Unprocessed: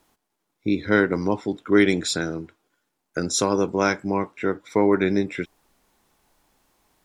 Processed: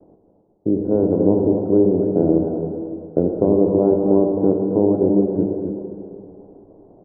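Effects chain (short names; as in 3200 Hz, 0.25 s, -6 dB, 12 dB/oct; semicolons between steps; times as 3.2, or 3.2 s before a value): per-bin compression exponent 0.6; steep low-pass 710 Hz 36 dB/oct; expander -43 dBFS; vocal rider 0.5 s; echo 0.265 s -8 dB; on a send at -4 dB: reverb RT60 2.6 s, pre-delay 52 ms; on the sum: gain +2.5 dB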